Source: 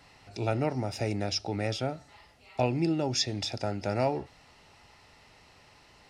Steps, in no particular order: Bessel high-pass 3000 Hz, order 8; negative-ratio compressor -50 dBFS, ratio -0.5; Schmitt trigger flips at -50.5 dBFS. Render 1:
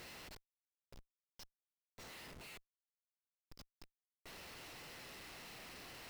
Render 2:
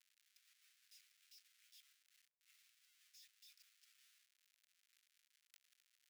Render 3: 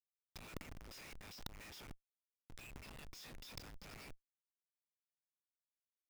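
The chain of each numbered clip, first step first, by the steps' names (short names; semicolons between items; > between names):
negative-ratio compressor > Bessel high-pass > Schmitt trigger; Schmitt trigger > negative-ratio compressor > Bessel high-pass; Bessel high-pass > Schmitt trigger > negative-ratio compressor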